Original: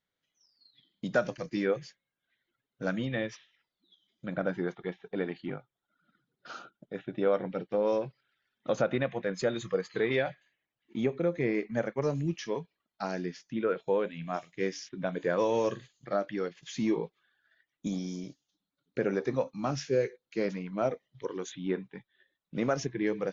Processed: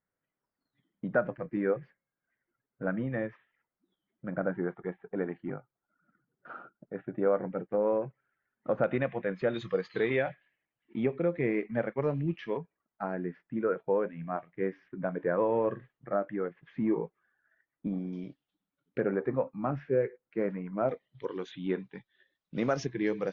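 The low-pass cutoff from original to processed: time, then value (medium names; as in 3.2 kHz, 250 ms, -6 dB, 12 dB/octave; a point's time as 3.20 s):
low-pass 24 dB/octave
1.8 kHz
from 8.84 s 2.7 kHz
from 9.54 s 4.4 kHz
from 10.10 s 2.8 kHz
from 12.57 s 1.8 kHz
from 18.13 s 2.9 kHz
from 19.00 s 1.9 kHz
from 20.89 s 3.9 kHz
from 21.80 s 5.7 kHz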